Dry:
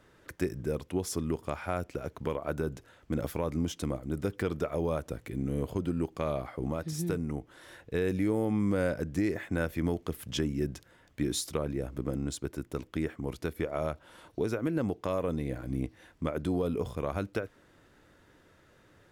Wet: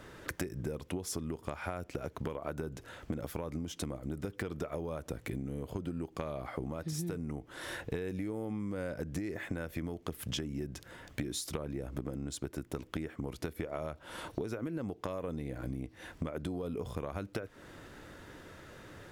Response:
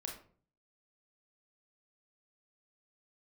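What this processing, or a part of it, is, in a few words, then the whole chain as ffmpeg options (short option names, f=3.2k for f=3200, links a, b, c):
serial compression, leveller first: -af "acompressor=threshold=-32dB:ratio=2,acompressor=threshold=-44dB:ratio=10,volume=10dB"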